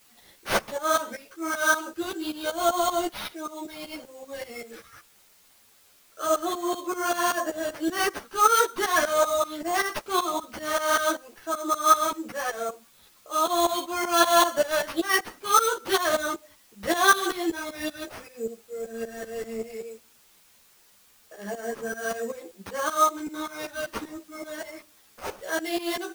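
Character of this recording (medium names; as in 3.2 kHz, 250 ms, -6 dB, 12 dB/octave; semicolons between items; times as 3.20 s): aliases and images of a low sample rate 7.5 kHz, jitter 0%; tremolo saw up 5.2 Hz, depth 90%; a quantiser's noise floor 10-bit, dither triangular; a shimmering, thickened sound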